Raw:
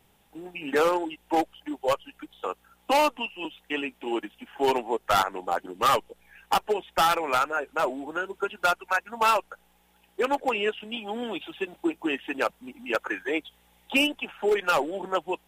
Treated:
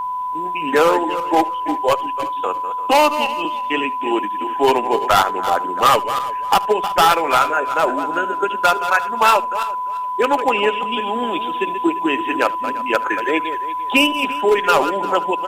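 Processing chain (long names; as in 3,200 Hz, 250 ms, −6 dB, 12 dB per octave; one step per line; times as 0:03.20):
feedback delay that plays each chunk backwards 172 ms, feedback 42%, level −10 dB
single-tap delay 75 ms −21 dB
steady tone 1,000 Hz −29 dBFS
level +8 dB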